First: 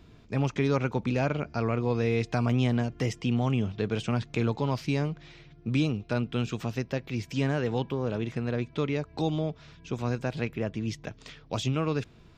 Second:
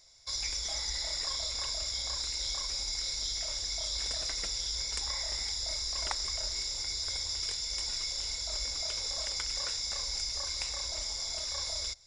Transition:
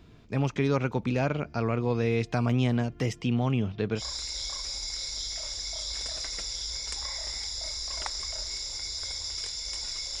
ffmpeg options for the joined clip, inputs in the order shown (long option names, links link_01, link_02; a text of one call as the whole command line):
ffmpeg -i cue0.wav -i cue1.wav -filter_complex "[0:a]asettb=1/sr,asplit=3[link_01][link_02][link_03];[link_01]atrim=end=3.274[link_04];[link_02]atrim=start=3.27:end=4.03,asetpts=PTS-STARTPTS,afade=type=in:duration=0.004:curve=qsin,afade=type=out:start_time=0.756:duration=0.004:curve=qsin,lowpass=6000[link_05];[link_03]atrim=start=4.026[link_06];[link_04][link_05]acrossfade=duration=0.004:curve1=hsin:curve2=qsin[link_07];[link_07][link_06]acrossfade=duration=0.004:curve1=qsin:curve2=hsin,apad=whole_dur=10.2,atrim=end=10.2,atrim=end=4.03,asetpts=PTS-STARTPTS[link_08];[1:a]atrim=start=2:end=8.25,asetpts=PTS-STARTPTS[link_09];[link_08][link_09]acrossfade=duration=0.08:curve1=tri:curve2=tri" out.wav